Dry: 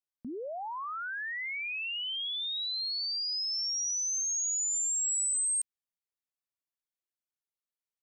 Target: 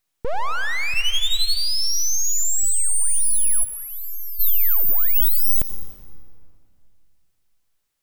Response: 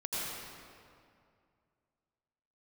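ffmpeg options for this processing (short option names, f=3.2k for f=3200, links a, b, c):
-filter_complex "[0:a]asettb=1/sr,asplit=3[a][b][c];[a]atrim=end=0.934[d];[b]atrim=start=0.93:end=1.57,asetpts=PTS-STARTPTS,afade=t=in:d=0.004:c=qsin,afade=t=out:st=0.636:d=0.004:c=qsin,aecho=1:1:7.4:0.65,atrim=end_sample=28224[e];[c]atrim=start=1.566[f];[d][e]acrossfade=d=0.004:c1=hsin:c2=qsin[g];[g][f]acrossfade=d=0.004:c1=qsin:c2=hsin,asplit=3[h][i][j];[h]afade=t=out:st=3.63:d=0.02[k];[i]lowpass=f=1.2k:p=1,afade=t=in:st=3.63:d=0.02,afade=t=out:st=4.39:d=0.02[l];[j]afade=t=in:st=4.39:d=0.02[m];[k][l][m]amix=inputs=3:normalize=0,aeval=exprs='abs(val(0))':c=same,asplit=2[n][o];[1:a]atrim=start_sample=2205[p];[o][p]afir=irnorm=-1:irlink=0,volume=-15dB[q];[n][q]amix=inputs=2:normalize=0,alimiter=level_in=27dB:limit=-1dB:release=50:level=0:latency=1,volume=-9dB"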